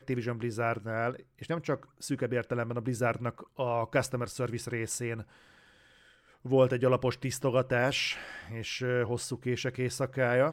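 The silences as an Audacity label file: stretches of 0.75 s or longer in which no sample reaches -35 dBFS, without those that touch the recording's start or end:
5.210000	6.450000	silence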